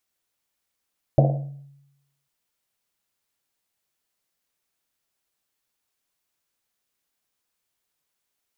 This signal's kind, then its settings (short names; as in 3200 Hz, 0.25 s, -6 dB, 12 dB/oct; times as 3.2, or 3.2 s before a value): Risset drum, pitch 140 Hz, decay 0.94 s, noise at 600 Hz, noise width 270 Hz, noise 30%